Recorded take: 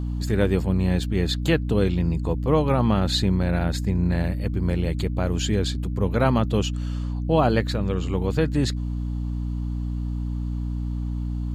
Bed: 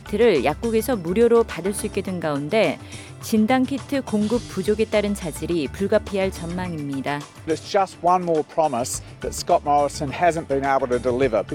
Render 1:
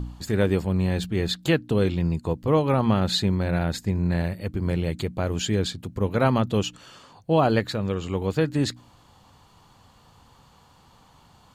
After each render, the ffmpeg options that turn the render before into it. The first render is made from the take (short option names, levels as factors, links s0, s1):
-af "bandreject=f=60:t=h:w=4,bandreject=f=120:t=h:w=4,bandreject=f=180:t=h:w=4,bandreject=f=240:t=h:w=4,bandreject=f=300:t=h:w=4"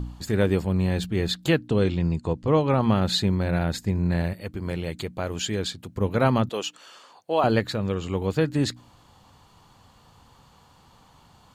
-filter_complex "[0:a]asettb=1/sr,asplit=3[s0][s1][s2];[s0]atrim=end=1.684[s3];[s1]atrim=start=1.68:end=2.81,asetpts=PTS-STARTPTS,afade=t=in:d=0.004:c=qsin,afade=t=out:st=1.126:d=0.004:c=qsin,lowpass=f=8600:w=0.5412,lowpass=f=8600:w=1.3066[s4];[s2]atrim=start=2.806[s5];[s3][s4]acrossfade=d=0.004:c1=hsin:c2=qsin[s6];[s6][s5]acrossfade=d=0.004:c1=qsin:c2=hsin,asettb=1/sr,asplit=3[s7][s8][s9];[s7]atrim=end=4.334[s10];[s8]atrim=start=4.33:end=5.98,asetpts=PTS-STARTPTS,afade=t=in:d=0.004:c=qsin,afade=t=out:st=1.646:d=0.004:c=qsin,lowshelf=f=360:g=-6.5[s11];[s9]atrim=start=5.976[s12];[s10][s11]acrossfade=d=0.004:c1=hsin:c2=qsin[s13];[s13][s12]acrossfade=d=0.004:c1=qsin:c2=hsin,asettb=1/sr,asplit=3[s14][s15][s16];[s14]atrim=end=6.494[s17];[s15]atrim=start=6.49:end=7.44,asetpts=PTS-STARTPTS,afade=t=in:d=0.004:c=qsin,afade=t=out:st=0.946:d=0.004:c=qsin,highpass=470[s18];[s16]atrim=start=7.436[s19];[s17][s18]acrossfade=d=0.004:c1=hsin:c2=qsin[s20];[s20][s19]acrossfade=d=0.004:c1=qsin:c2=hsin"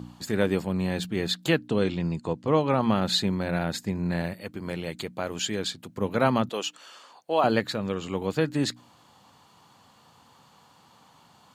-af "highpass=170,equalizer=f=400:w=1.7:g=-2.5"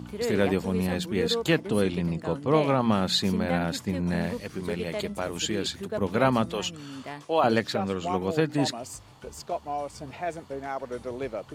-filter_complex "[1:a]volume=0.211[s0];[0:a][s0]amix=inputs=2:normalize=0"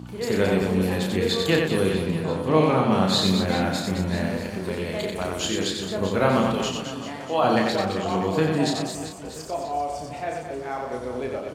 -filter_complex "[0:a]asplit=2[s0][s1];[s1]adelay=32,volume=0.596[s2];[s0][s2]amix=inputs=2:normalize=0,asplit=2[s3][s4];[s4]aecho=0:1:90|216|392.4|639.4|985.1:0.631|0.398|0.251|0.158|0.1[s5];[s3][s5]amix=inputs=2:normalize=0"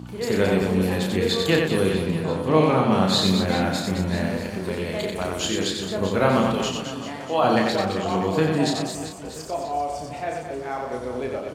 -af "volume=1.12"